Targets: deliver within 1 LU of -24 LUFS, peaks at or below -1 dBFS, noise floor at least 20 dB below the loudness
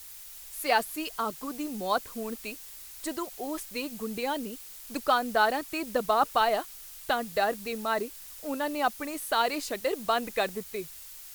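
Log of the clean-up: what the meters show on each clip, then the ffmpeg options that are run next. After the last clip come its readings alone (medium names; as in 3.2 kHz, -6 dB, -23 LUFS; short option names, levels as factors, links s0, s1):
noise floor -46 dBFS; noise floor target -50 dBFS; loudness -30.0 LUFS; peak level -10.5 dBFS; loudness target -24.0 LUFS
-> -af "afftdn=nr=6:nf=-46"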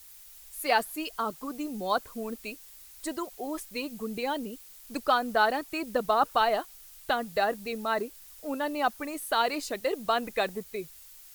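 noise floor -51 dBFS; loudness -30.0 LUFS; peak level -11.0 dBFS; loudness target -24.0 LUFS
-> -af "volume=2"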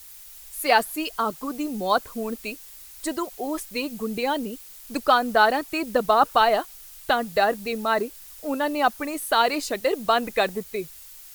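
loudness -24.0 LUFS; peak level -5.0 dBFS; noise floor -45 dBFS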